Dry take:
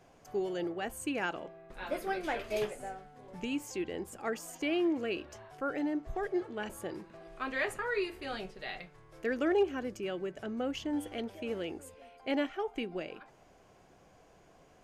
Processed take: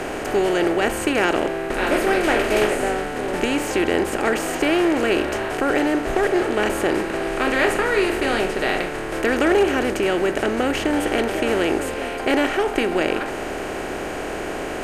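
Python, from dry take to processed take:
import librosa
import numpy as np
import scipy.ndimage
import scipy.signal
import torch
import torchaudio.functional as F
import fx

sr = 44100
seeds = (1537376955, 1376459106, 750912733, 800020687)

y = fx.bin_compress(x, sr, power=0.4)
y = F.gain(torch.from_numpy(y), 8.5).numpy()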